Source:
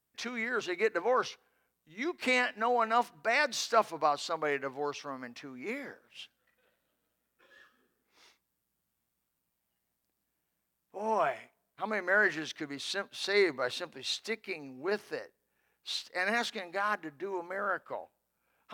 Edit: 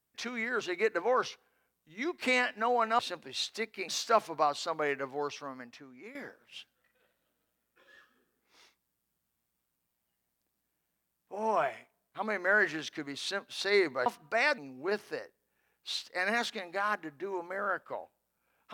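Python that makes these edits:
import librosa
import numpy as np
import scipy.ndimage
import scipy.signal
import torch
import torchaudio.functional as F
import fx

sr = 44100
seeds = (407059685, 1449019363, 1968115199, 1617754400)

y = fx.edit(x, sr, fx.swap(start_s=2.99, length_s=0.52, other_s=13.69, other_length_s=0.89),
    fx.fade_out_to(start_s=4.94, length_s=0.84, floor_db=-14.0), tone=tone)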